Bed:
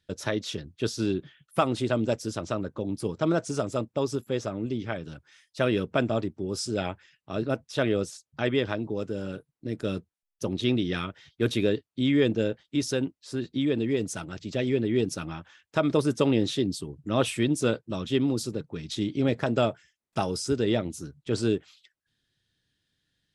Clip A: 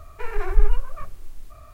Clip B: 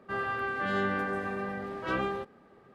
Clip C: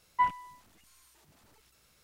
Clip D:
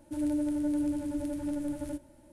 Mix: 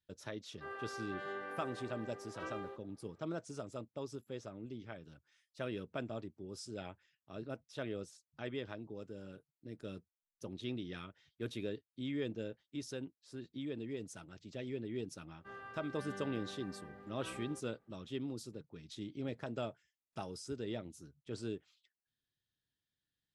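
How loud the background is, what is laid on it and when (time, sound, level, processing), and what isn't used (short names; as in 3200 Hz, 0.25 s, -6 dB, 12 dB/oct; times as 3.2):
bed -16 dB
0.52 add B -14 dB + resonant low shelf 260 Hz -11.5 dB, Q 1.5
15.36 add B -17.5 dB
not used: A, C, D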